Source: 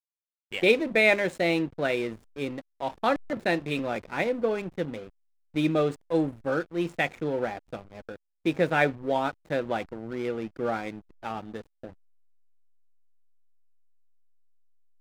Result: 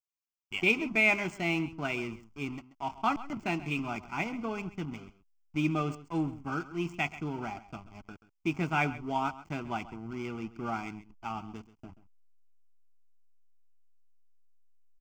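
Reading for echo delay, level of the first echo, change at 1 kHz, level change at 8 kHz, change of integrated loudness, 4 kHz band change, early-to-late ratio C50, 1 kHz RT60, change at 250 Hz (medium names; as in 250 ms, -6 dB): 133 ms, -16.5 dB, -2.5 dB, no reading, -5.0 dB, -5.0 dB, no reverb, no reverb, -4.0 dB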